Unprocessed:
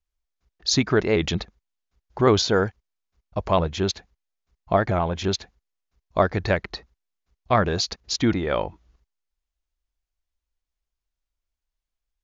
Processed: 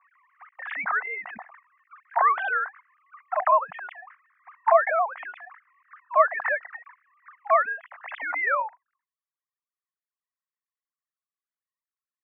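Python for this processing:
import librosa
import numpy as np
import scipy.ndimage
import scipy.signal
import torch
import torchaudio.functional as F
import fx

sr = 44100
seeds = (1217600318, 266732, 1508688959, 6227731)

y = fx.sine_speech(x, sr)
y = scipy.signal.sosfilt(scipy.signal.ellip(3, 1.0, 40, [710.0, 2000.0], 'bandpass', fs=sr, output='sos'), y)
y = fx.pre_swell(y, sr, db_per_s=42.0)
y = F.gain(torch.from_numpy(y), 3.5).numpy()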